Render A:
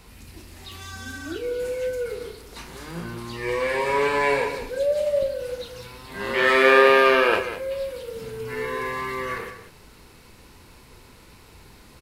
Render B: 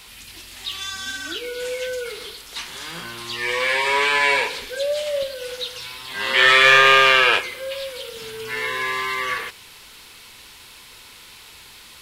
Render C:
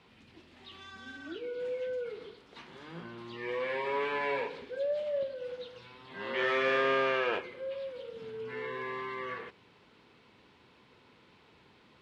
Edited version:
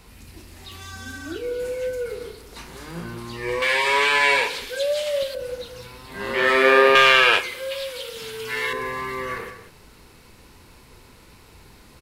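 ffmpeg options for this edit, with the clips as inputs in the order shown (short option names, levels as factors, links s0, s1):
-filter_complex "[1:a]asplit=2[s0][s1];[0:a]asplit=3[s2][s3][s4];[s2]atrim=end=3.622[s5];[s0]atrim=start=3.618:end=5.352[s6];[s3]atrim=start=5.348:end=6.952[s7];[s1]atrim=start=6.948:end=8.732[s8];[s4]atrim=start=8.728[s9];[s5][s6]acrossfade=d=0.004:c1=hsin:c2=hsin[s10];[s10][s7]acrossfade=d=0.004:c1=hsin:c2=hsin[s11];[s11][s8]acrossfade=d=0.004:c1=hsin:c2=hsin[s12];[s12][s9]acrossfade=d=0.004:c1=hsin:c2=hsin"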